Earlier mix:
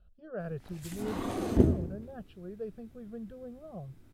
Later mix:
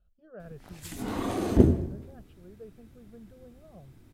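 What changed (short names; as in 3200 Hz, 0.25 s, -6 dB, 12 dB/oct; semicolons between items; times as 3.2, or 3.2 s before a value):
speech -7.5 dB; background +4.0 dB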